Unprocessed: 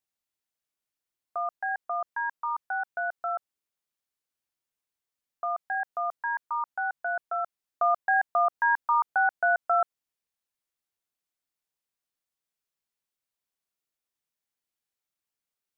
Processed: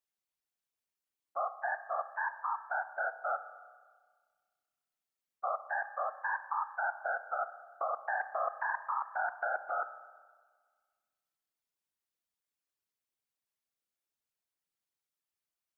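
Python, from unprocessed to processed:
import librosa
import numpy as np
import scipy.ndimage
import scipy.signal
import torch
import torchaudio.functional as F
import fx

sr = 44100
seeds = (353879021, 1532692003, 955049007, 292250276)

y = fx.level_steps(x, sr, step_db=15)
y = fx.whisperise(y, sr, seeds[0])
y = fx.rev_spring(y, sr, rt60_s=1.6, pass_ms=(30, 59), chirp_ms=55, drr_db=12.0)
y = y * librosa.db_to_amplitude(-3.0)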